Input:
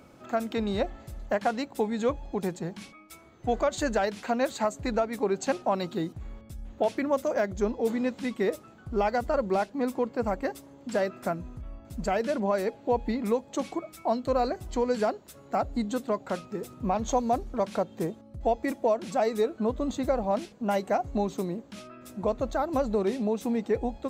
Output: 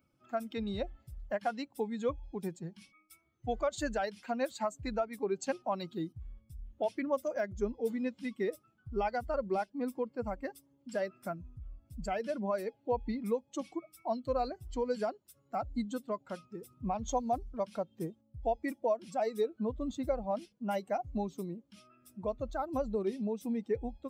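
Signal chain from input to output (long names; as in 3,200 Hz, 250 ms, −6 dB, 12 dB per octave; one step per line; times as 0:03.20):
spectral dynamics exaggerated over time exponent 1.5
level −4 dB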